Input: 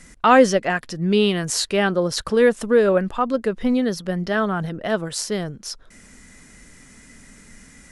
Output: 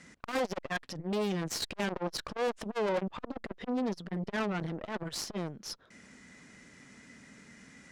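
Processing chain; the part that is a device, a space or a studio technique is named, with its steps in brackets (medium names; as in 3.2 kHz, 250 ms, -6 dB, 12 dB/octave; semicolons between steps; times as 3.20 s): valve radio (band-pass 120–5200 Hz; valve stage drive 26 dB, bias 0.8; transformer saturation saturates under 440 Hz)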